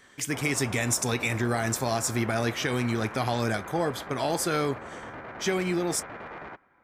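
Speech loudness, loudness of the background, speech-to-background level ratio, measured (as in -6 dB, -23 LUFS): -28.0 LUFS, -40.5 LUFS, 12.5 dB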